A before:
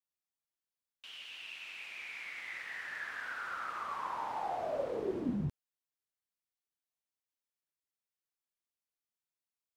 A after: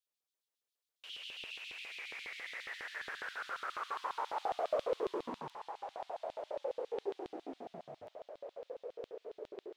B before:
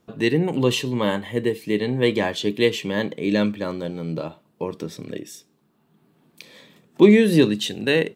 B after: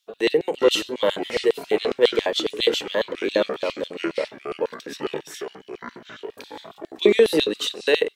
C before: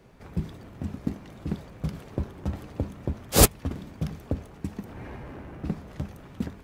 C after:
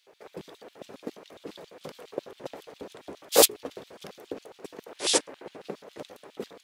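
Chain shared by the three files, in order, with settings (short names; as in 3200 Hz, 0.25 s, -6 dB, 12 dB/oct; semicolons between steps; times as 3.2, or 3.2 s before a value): notches 60/120/180/240/300/360/420 Hz; echoes that change speed 0.297 s, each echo -6 st, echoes 3, each echo -6 dB; LFO high-pass square 7.3 Hz 460–3500 Hz; gain -1 dB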